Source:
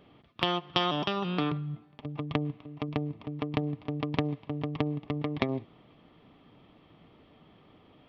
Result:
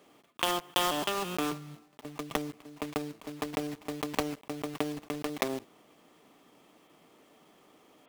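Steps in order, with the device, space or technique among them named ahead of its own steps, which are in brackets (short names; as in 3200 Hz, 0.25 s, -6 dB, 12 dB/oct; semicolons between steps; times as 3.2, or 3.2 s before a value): early digital voice recorder (BPF 290–3800 Hz; block floating point 3-bit)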